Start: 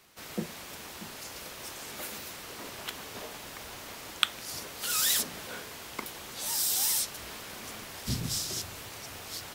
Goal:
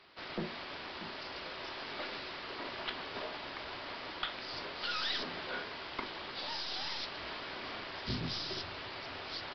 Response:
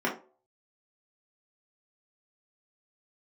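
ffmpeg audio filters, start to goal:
-filter_complex "[0:a]lowshelf=frequency=320:gain=-5.5,aeval=exprs='(tanh(28.2*val(0)+0.25)-tanh(0.25))/28.2':channel_layout=same,asplit=2[link_01][link_02];[1:a]atrim=start_sample=2205[link_03];[link_02][link_03]afir=irnorm=-1:irlink=0,volume=-19dB[link_04];[link_01][link_04]amix=inputs=2:normalize=0,aresample=11025,aresample=44100,volume=1.5dB"

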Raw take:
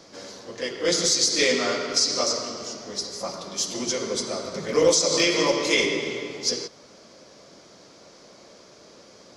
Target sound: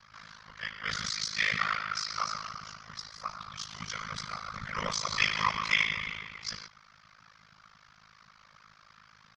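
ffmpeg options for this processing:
ffmpeg -i in.wav -filter_complex "[0:a]asettb=1/sr,asplit=3[link_01][link_02][link_03];[link_01]atrim=end=3.984[link_04];[link_02]atrim=start=3.98:end=6.2,asetpts=PTS-STARTPTS,afade=type=in:duration=0.004:curve=qsin,afade=type=out:start_time=2.216:duration=0.004:curve=qsin,aecho=1:1:6:0.56,atrim=end_sample=97902[link_05];[link_03]atrim=start=6.196[link_06];[link_04][link_05]acrossfade=duration=0.004:curve1=hsin:curve2=qsin[link_07];[link_07][link_06]acrossfade=duration=0.004:curve1=qsin:curve2=hsin,afftfilt=real='hypot(re,im)*cos(2*PI*random(0))':imag='hypot(re,im)*sin(2*PI*random(1))':win_size=512:overlap=0.75,firequalizer=gain_entry='entry(170,0);entry(270,-27);entry(400,-25);entry(1200,9);entry(2100,4);entry(3500,-1);entry(7500,-15);entry(12000,-21)':delay=0.05:min_phase=1,tremolo=f=53:d=0.947,volume=3.5dB" out.wav

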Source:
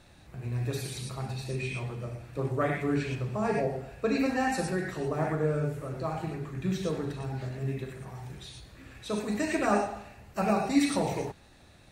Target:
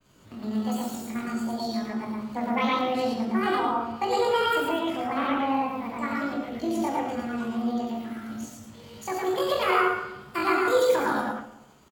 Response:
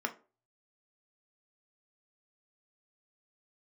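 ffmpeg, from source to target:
-filter_complex "[0:a]asetrate=78577,aresample=44100,atempo=0.561231,acontrast=34,agate=range=-33dB:threshold=-46dB:ratio=3:detection=peak,asplit=2[link_01][link_02];[link_02]adelay=136,lowpass=frequency=1800:poles=1,volume=-16dB,asplit=2[link_03][link_04];[link_04]adelay=136,lowpass=frequency=1800:poles=1,volume=0.49,asplit=2[link_05][link_06];[link_06]adelay=136,lowpass=frequency=1800:poles=1,volume=0.49,asplit=2[link_07][link_08];[link_08]adelay=136,lowpass=frequency=1800:poles=1,volume=0.49[link_09];[link_01][link_03][link_05][link_07][link_09]amix=inputs=5:normalize=0,asplit=2[link_10][link_11];[1:a]atrim=start_sample=2205,adelay=109[link_12];[link_11][link_12]afir=irnorm=-1:irlink=0,volume=-4dB[link_13];[link_10][link_13]amix=inputs=2:normalize=0,adynamicequalizer=threshold=0.00794:dfrequency=4900:dqfactor=0.7:tfrequency=4900:tqfactor=0.7:attack=5:release=100:ratio=0.375:range=3:mode=cutabove:tftype=highshelf,volume=-4.5dB"

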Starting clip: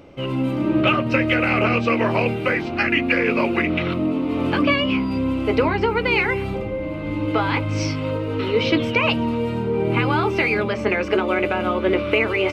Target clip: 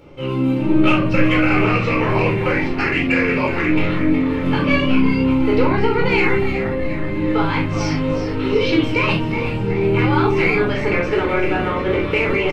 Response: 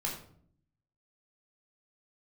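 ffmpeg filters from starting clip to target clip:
-filter_complex "[0:a]asplit=2[link_01][link_02];[link_02]asoftclip=type=tanh:threshold=-14dB,volume=-5dB[link_03];[link_01][link_03]amix=inputs=2:normalize=0,asplit=8[link_04][link_05][link_06][link_07][link_08][link_09][link_10][link_11];[link_05]adelay=366,afreqshift=-130,volume=-10dB[link_12];[link_06]adelay=732,afreqshift=-260,volume=-14.7dB[link_13];[link_07]adelay=1098,afreqshift=-390,volume=-19.5dB[link_14];[link_08]adelay=1464,afreqshift=-520,volume=-24.2dB[link_15];[link_09]adelay=1830,afreqshift=-650,volume=-28.9dB[link_16];[link_10]adelay=2196,afreqshift=-780,volume=-33.7dB[link_17];[link_11]adelay=2562,afreqshift=-910,volume=-38.4dB[link_18];[link_04][link_12][link_13][link_14][link_15][link_16][link_17][link_18]amix=inputs=8:normalize=0[link_19];[1:a]atrim=start_sample=2205,afade=type=out:start_time=0.13:duration=0.01,atrim=end_sample=6174[link_20];[link_19][link_20]afir=irnorm=-1:irlink=0,volume=-5dB"

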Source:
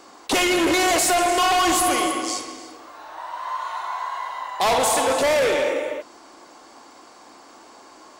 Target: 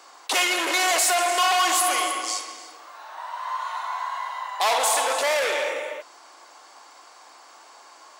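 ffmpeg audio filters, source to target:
ffmpeg -i in.wav -af "highpass=720" out.wav

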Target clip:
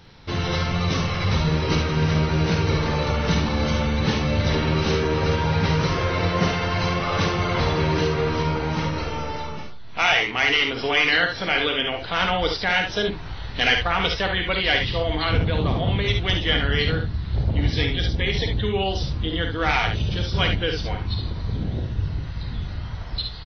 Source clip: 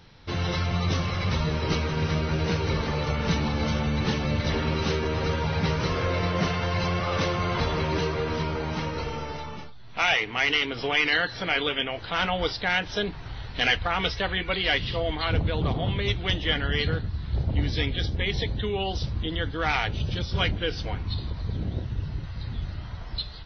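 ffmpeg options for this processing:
ffmpeg -i in.wav -af "aecho=1:1:52|71:0.422|0.422,volume=3dB" out.wav

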